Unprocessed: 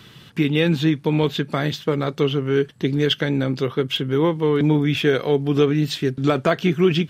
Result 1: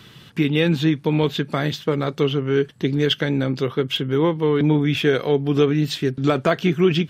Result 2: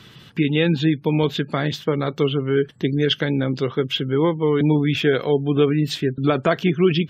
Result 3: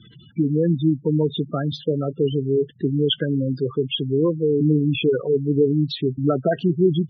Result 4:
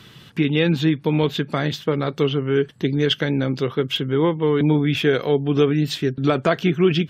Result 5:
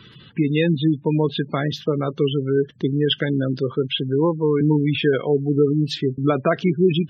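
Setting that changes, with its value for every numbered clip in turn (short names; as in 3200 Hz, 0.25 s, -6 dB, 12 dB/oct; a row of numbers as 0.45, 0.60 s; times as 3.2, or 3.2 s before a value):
spectral gate, under each frame's peak: -60, -35, -10, -45, -20 dB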